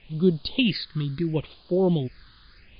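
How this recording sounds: tremolo saw up 1.3 Hz, depth 50%; a quantiser's noise floor 8-bit, dither triangular; phasing stages 6, 0.74 Hz, lowest notch 640–2100 Hz; MP3

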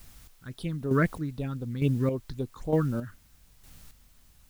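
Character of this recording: phasing stages 6, 3.8 Hz, lowest notch 660–2100 Hz; a quantiser's noise floor 10-bit, dither triangular; chopped level 1.1 Hz, depth 60%, duty 30%

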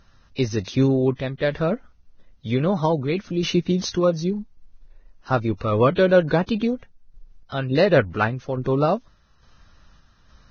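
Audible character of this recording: random-step tremolo; Vorbis

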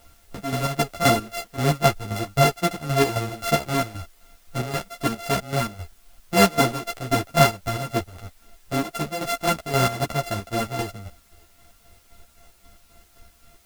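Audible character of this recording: a buzz of ramps at a fixed pitch in blocks of 64 samples; chopped level 3.8 Hz, depth 65%, duty 50%; a quantiser's noise floor 10-bit, dither triangular; a shimmering, thickened sound

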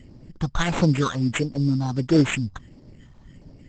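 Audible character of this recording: phasing stages 4, 1.5 Hz, lowest notch 390–2100 Hz; aliases and images of a low sample rate 5000 Hz, jitter 0%; Opus

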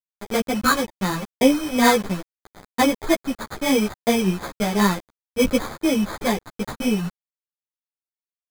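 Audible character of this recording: a quantiser's noise floor 6-bit, dither none; phasing stages 4, 1.1 Hz, lowest notch 770–4800 Hz; aliases and images of a low sample rate 2800 Hz, jitter 0%; a shimmering, thickened sound

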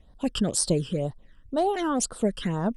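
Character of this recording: phasing stages 12, 2 Hz, lowest notch 680–2500 Hz

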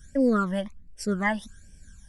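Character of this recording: phasing stages 12, 1.3 Hz, lowest notch 400–1300 Hz

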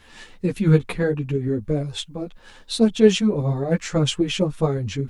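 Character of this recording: a quantiser's noise floor 12-bit, dither none; tremolo saw up 8.8 Hz, depth 35%; a shimmering, thickened sound

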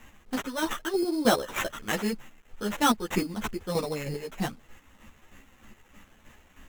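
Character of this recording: aliases and images of a low sample rate 4700 Hz, jitter 0%; chopped level 3.2 Hz, depth 60%, duty 30%; a quantiser's noise floor 10-bit, dither none; a shimmering, thickened sound

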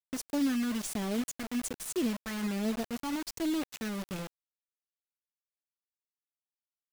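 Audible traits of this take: phasing stages 2, 1.2 Hz, lowest notch 500–1700 Hz; a quantiser's noise floor 6-bit, dither none

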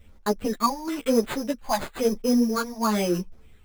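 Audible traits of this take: phasing stages 8, 1 Hz, lowest notch 400–3600 Hz; aliases and images of a low sample rate 5600 Hz, jitter 0%; a shimmering, thickened sound

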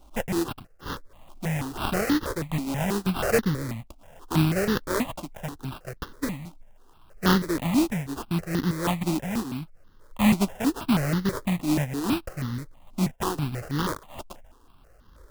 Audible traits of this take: a buzz of ramps at a fixed pitch in blocks of 16 samples; random-step tremolo; aliases and images of a low sample rate 2200 Hz, jitter 20%; notches that jump at a steady rate 6.2 Hz 470–2400 Hz

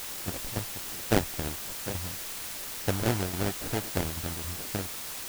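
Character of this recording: aliases and images of a low sample rate 1100 Hz, jitter 20%; tremolo saw down 3.6 Hz, depth 70%; a quantiser's noise floor 6-bit, dither triangular

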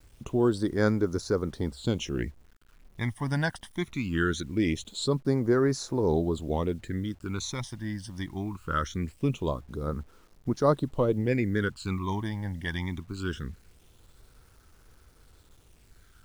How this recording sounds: phasing stages 12, 0.22 Hz, lowest notch 410–3000 Hz; a quantiser's noise floor 10-bit, dither none

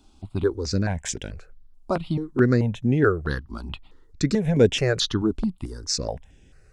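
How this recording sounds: notches that jump at a steady rate 4.6 Hz 490–4300 Hz

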